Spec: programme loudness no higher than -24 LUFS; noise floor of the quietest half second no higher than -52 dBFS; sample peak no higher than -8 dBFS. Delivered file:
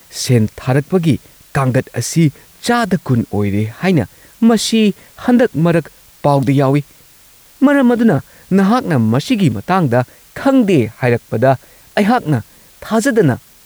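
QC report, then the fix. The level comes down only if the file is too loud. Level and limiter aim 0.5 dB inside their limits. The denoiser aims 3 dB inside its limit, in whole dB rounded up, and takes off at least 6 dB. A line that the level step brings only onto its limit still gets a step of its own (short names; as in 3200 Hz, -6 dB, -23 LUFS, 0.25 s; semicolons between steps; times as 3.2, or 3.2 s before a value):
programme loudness -14.5 LUFS: fail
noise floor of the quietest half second -45 dBFS: fail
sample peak -2.0 dBFS: fail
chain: gain -10 dB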